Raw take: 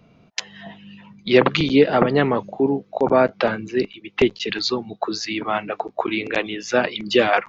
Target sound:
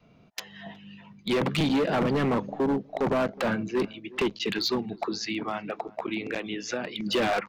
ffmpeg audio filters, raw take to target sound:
-filter_complex "[0:a]adynamicequalizer=threshold=0.0224:dfrequency=190:dqfactor=1.1:tfrequency=190:tqfactor=1.1:attack=5:release=100:ratio=0.375:range=3:mode=boostabove:tftype=bell,alimiter=limit=-7.5dB:level=0:latency=1:release=31,asettb=1/sr,asplit=3[a][b][c];[a]atrim=end=5.064[d];[b]atrim=start=5.06:end=7.06,asetpts=PTS-STARTPTS,afade=t=in:d=0.004:c=qsin,afade=t=out:st=1.996:d=0.004:c=qsin,acompressor=threshold=-23dB:ratio=8[e];[c]atrim=start=7.056[f];[d][e]acrossfade=d=0.004:c1=hsin:c2=qsin[g];[g][f]acrossfade=d=0.004:c1=qsin:c2=hsin,volume=17dB,asoftclip=hard,volume=-17dB,asplit=2[h][i];[i]adelay=366,lowpass=f=830:p=1,volume=-19dB,asplit=2[j][k];[k]adelay=366,lowpass=f=830:p=1,volume=0.35,asplit=2[l][m];[m]adelay=366,lowpass=f=830:p=1,volume=0.35[n];[h][j][l][n]amix=inputs=4:normalize=0,volume=-4dB"

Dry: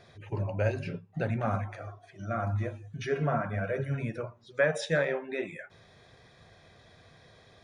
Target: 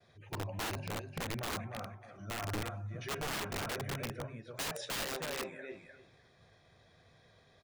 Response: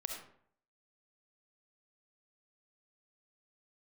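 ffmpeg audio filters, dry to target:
-af "agate=range=-33dB:threshold=-55dB:ratio=3:detection=peak,aecho=1:1:302|604|906:0.501|0.0852|0.0145,aeval=exprs='(mod(16.8*val(0)+1,2)-1)/16.8':c=same,volume=-7.5dB"

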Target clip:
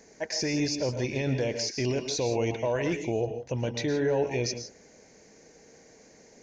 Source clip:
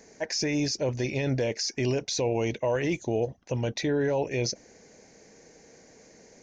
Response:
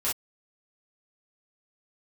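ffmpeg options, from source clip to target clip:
-filter_complex "[0:a]asplit=2[a][b];[1:a]atrim=start_sample=2205,adelay=108[c];[b][c]afir=irnorm=-1:irlink=0,volume=-15dB[d];[a][d]amix=inputs=2:normalize=0,volume=-1.5dB"

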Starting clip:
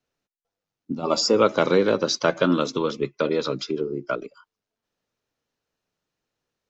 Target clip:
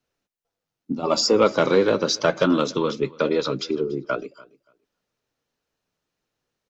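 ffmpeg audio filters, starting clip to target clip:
-filter_complex "[0:a]asoftclip=type=tanh:threshold=-7.5dB,flanger=delay=0.6:depth=8:regen=-67:speed=0.85:shape=triangular,asplit=2[a][b];[b]aecho=0:1:287|574:0.0708|0.0135[c];[a][c]amix=inputs=2:normalize=0,volume=6dB"

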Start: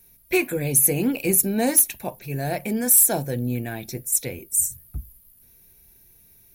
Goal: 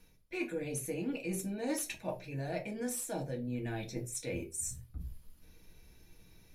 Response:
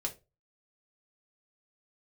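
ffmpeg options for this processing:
-filter_complex "[0:a]lowpass=5.5k,areverse,acompressor=threshold=-37dB:ratio=6,areverse[a];[1:a]atrim=start_sample=2205[b];[a][b]afir=irnorm=-1:irlink=0"

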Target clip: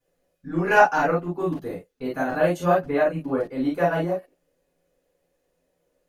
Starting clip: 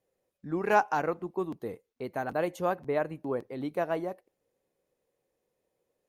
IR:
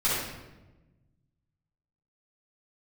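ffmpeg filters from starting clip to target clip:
-filter_complex "[1:a]atrim=start_sample=2205,atrim=end_sample=3969,asetrate=57330,aresample=44100[a];[0:a][a]afir=irnorm=-1:irlink=0"

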